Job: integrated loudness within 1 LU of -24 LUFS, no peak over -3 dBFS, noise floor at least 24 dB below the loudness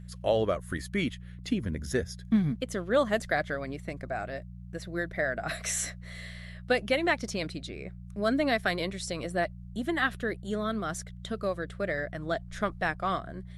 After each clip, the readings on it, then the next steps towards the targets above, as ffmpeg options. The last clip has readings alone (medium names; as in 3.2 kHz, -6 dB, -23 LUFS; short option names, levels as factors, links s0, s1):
hum 60 Hz; highest harmonic 180 Hz; hum level -41 dBFS; loudness -31.0 LUFS; peak level -13.0 dBFS; loudness target -24.0 LUFS
-> -af "bandreject=f=60:t=h:w=4,bandreject=f=120:t=h:w=4,bandreject=f=180:t=h:w=4"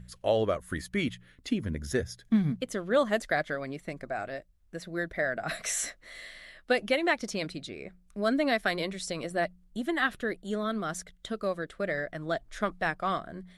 hum not found; loudness -31.0 LUFS; peak level -13.5 dBFS; loudness target -24.0 LUFS
-> -af "volume=2.24"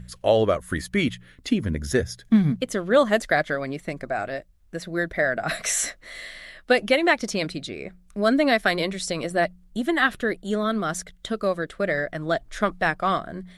loudness -24.0 LUFS; peak level -6.5 dBFS; noise floor -55 dBFS